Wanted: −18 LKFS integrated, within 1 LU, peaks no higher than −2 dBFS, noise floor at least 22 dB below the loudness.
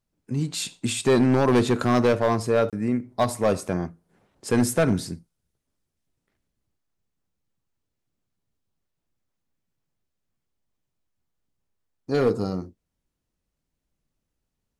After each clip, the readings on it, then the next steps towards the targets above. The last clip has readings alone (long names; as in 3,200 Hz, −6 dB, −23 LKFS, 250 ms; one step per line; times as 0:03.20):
share of clipped samples 1.0%; peaks flattened at −14.0 dBFS; number of dropouts 1; longest dropout 27 ms; integrated loudness −23.5 LKFS; sample peak −14.0 dBFS; target loudness −18.0 LKFS
→ clipped peaks rebuilt −14 dBFS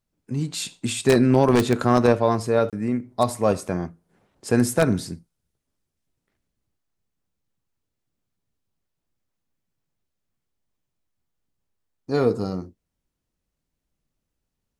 share of clipped samples 0.0%; number of dropouts 1; longest dropout 27 ms
→ repair the gap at 0:02.70, 27 ms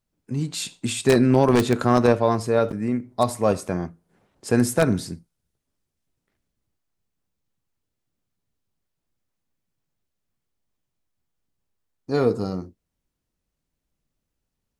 number of dropouts 0; integrated loudness −22.0 LKFS; sample peak −5.0 dBFS; target loudness −18.0 LKFS
→ level +4 dB
brickwall limiter −2 dBFS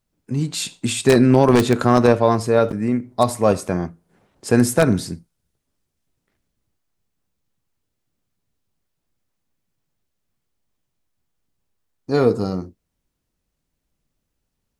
integrated loudness −18.0 LKFS; sample peak −2.0 dBFS; background noise floor −77 dBFS